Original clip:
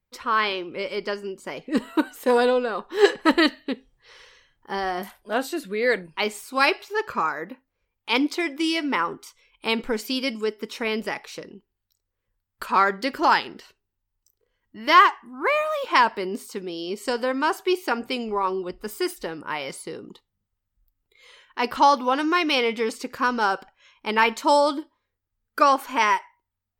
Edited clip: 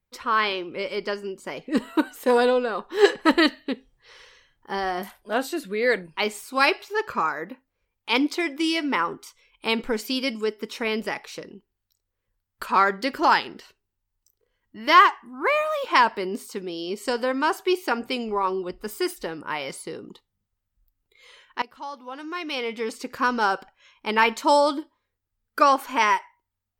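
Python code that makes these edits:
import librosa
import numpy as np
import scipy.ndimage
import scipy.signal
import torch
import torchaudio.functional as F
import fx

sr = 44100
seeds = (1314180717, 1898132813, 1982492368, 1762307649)

y = fx.edit(x, sr, fx.fade_in_from(start_s=21.62, length_s=1.56, curve='qua', floor_db=-21.0), tone=tone)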